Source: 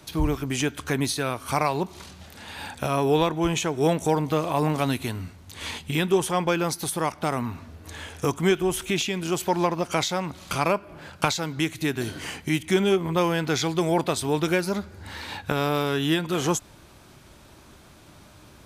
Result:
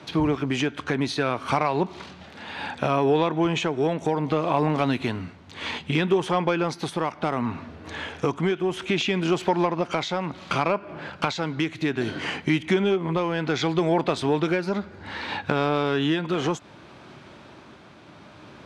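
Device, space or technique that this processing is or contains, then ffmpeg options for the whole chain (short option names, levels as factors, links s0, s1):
AM radio: -af "highpass=140,lowpass=3400,acompressor=threshold=0.0631:ratio=4,asoftclip=type=tanh:threshold=0.188,tremolo=f=0.64:d=0.29,volume=2.24"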